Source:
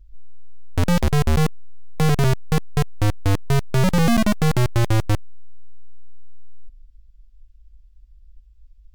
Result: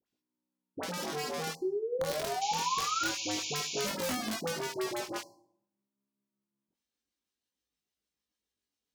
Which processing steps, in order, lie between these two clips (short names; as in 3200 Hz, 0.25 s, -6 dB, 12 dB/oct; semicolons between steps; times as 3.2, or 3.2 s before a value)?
gliding pitch shift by +2.5 st starting unshifted; HPF 250 Hz 24 dB/oct; painted sound rise, 1.61–3.05, 360–1500 Hz -23 dBFS; in parallel at -2 dB: limiter -16 dBFS, peak gain reduction 7.5 dB; on the sum: compressor 8:1, threshold -22 dBFS, peak gain reduction 8.5 dB; dynamic EQ 5400 Hz, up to +6 dB, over -52 dBFS, Q 1.6; dispersion highs, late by 63 ms, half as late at 920 Hz; wrapped overs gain 17 dB; chorus 0.25 Hz, delay 19 ms, depth 5.7 ms; painted sound noise, 2.41–3.87, 2200–7200 Hz -32 dBFS; on a send at -10.5 dB: brick-wall FIR band-stop 1100–4000 Hz + reverb RT60 0.70 s, pre-delay 5 ms; on the sum: gain -6 dB